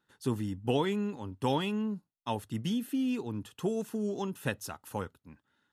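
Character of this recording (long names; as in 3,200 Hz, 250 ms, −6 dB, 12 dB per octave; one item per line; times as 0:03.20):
background noise floor −83 dBFS
spectral slope −5.5 dB per octave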